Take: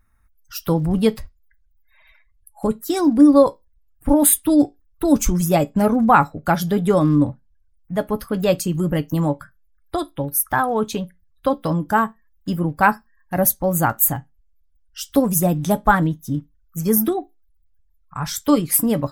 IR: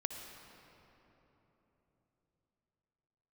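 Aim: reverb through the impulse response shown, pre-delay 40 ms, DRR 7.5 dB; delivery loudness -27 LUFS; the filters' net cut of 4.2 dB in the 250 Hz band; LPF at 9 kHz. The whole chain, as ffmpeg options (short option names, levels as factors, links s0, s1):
-filter_complex "[0:a]lowpass=9000,equalizer=f=250:t=o:g=-5.5,asplit=2[s0][s1];[1:a]atrim=start_sample=2205,adelay=40[s2];[s1][s2]afir=irnorm=-1:irlink=0,volume=0.398[s3];[s0][s3]amix=inputs=2:normalize=0,volume=0.501"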